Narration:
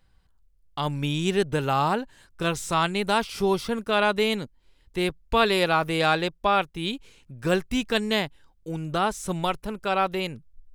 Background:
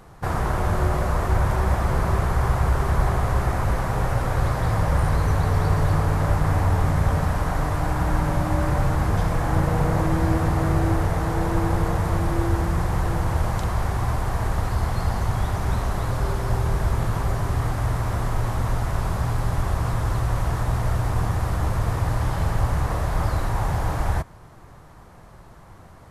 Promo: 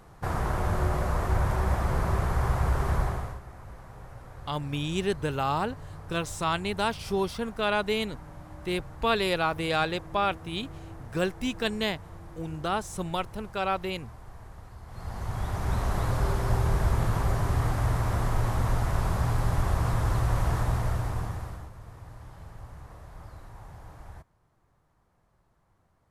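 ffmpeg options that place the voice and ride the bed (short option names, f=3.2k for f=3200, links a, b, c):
-filter_complex "[0:a]adelay=3700,volume=-4.5dB[a];[1:a]volume=15dB,afade=t=out:st=2.94:d=0.46:silence=0.133352,afade=t=in:st=14.86:d=1.12:silence=0.1,afade=t=out:st=20.56:d=1.14:silence=0.1[b];[a][b]amix=inputs=2:normalize=0"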